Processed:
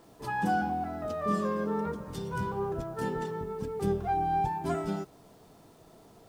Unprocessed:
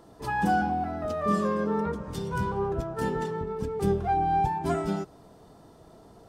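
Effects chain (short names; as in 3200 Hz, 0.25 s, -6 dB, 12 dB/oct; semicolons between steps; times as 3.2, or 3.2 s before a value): bell 62 Hz -13 dB 0.34 oct; requantised 10-bit, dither none; gain -3.5 dB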